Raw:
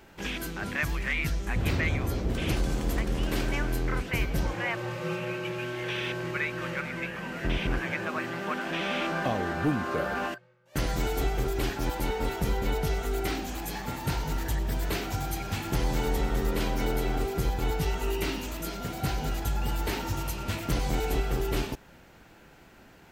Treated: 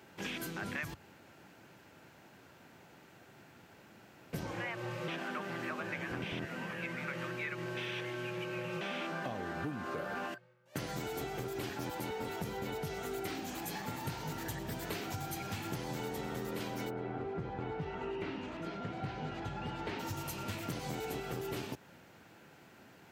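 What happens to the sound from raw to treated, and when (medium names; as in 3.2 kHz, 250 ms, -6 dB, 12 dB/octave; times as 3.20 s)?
0.94–4.33 s: room tone
5.08–8.81 s: reverse
16.89–19.98 s: low-pass 1.6 kHz -> 3.5 kHz
whole clip: high-pass 91 Hz 24 dB/octave; compression, threshold -32 dBFS; trim -3.5 dB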